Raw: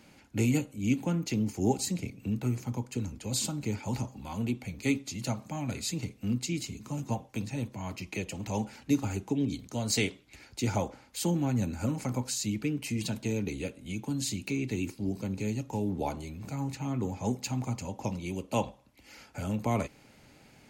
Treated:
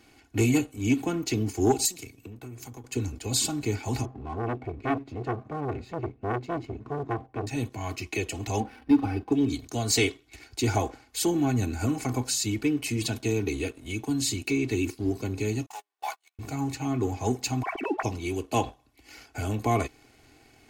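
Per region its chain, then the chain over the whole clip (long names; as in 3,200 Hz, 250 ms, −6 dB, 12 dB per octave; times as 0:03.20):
0:01.85–0:02.84: downward compressor, threshold −41 dBFS + high-shelf EQ 4,300 Hz +12 dB + multiband upward and downward expander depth 100%
0:04.05–0:07.47: low-pass filter 1,300 Hz + parametric band 140 Hz +5.5 dB 1.2 octaves + saturating transformer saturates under 1,200 Hz
0:08.60–0:09.32: high-frequency loss of the air 170 metres + comb filter 3.9 ms, depth 47% + linearly interpolated sample-rate reduction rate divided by 6×
0:15.66–0:16.39: converter with a step at zero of −42 dBFS + high-pass filter 880 Hz 24 dB per octave + noise gate −45 dBFS, range −35 dB
0:17.63–0:18.03: three sine waves on the formant tracks + comb filter 3 ms, depth 32%
whole clip: comb filter 2.7 ms, depth 77%; leveller curve on the samples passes 1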